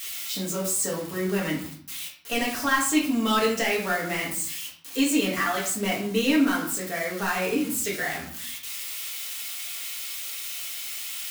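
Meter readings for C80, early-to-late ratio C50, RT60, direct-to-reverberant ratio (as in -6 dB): 10.0 dB, 6.0 dB, 0.50 s, -5.0 dB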